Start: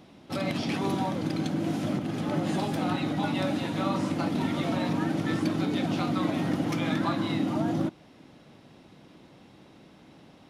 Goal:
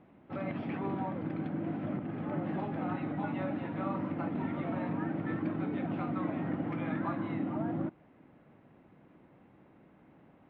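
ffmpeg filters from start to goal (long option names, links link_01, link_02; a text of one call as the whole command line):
ffmpeg -i in.wav -af "lowpass=frequency=2200:width=0.5412,lowpass=frequency=2200:width=1.3066,volume=-6.5dB" out.wav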